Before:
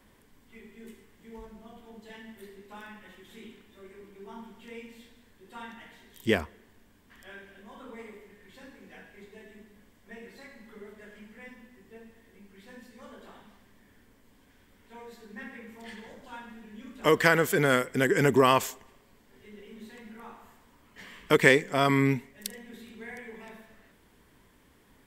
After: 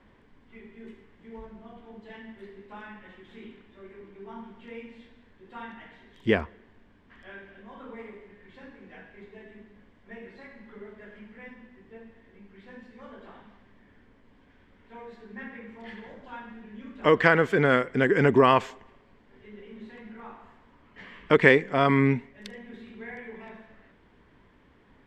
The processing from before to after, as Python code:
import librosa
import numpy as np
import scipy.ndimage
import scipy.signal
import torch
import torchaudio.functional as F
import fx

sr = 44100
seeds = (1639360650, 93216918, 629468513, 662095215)

y = scipy.signal.sosfilt(scipy.signal.butter(2, 2700.0, 'lowpass', fs=sr, output='sos'), x)
y = y * 10.0 ** (2.5 / 20.0)